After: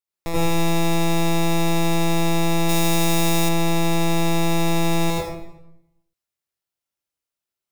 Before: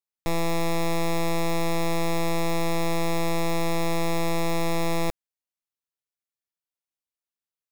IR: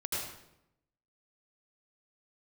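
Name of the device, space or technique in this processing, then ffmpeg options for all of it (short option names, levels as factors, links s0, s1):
bathroom: -filter_complex "[1:a]atrim=start_sample=2205[s0];[0:a][s0]afir=irnorm=-1:irlink=0,asettb=1/sr,asplit=3[s1][s2][s3];[s1]atrim=end=2.694[s4];[s2]atrim=start=2.69:end=3.49,asetpts=PTS-STARTPTS,afade=t=in:d=0.004:c=qsin,afade=t=out:st=0.796:d=0.004:c=qsin,highshelf=f=4100:g=8.5[s5];[s3]atrim=start=3.486[s6];[s4][s5]acrossfade=d=0.004:c1=hsin:c2=qsin[s7];[s7][s6]acrossfade=d=0.004:c1=qsin:c2=hsin,volume=1.19"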